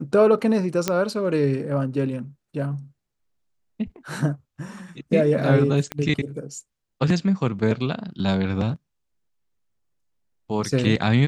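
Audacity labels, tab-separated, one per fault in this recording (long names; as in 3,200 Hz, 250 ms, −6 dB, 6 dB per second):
0.880000	0.880000	click −6 dBFS
5.920000	5.920000	click −13 dBFS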